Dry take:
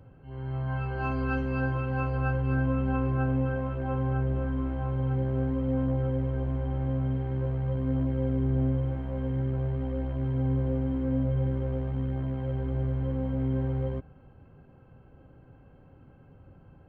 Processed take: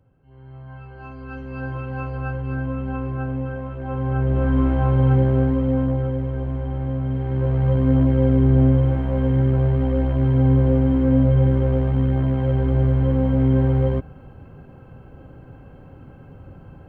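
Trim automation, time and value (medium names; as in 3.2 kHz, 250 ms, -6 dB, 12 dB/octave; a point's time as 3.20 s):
1.18 s -8 dB
1.75 s +0.5 dB
3.77 s +0.5 dB
4.57 s +12 dB
5.12 s +12 dB
6.19 s +4 dB
7.04 s +4 dB
7.65 s +11 dB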